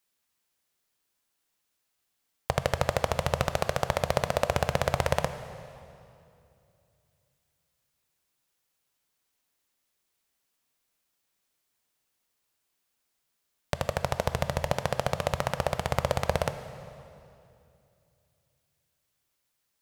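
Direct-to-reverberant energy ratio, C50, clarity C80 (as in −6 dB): 10.5 dB, 11.5 dB, 12.5 dB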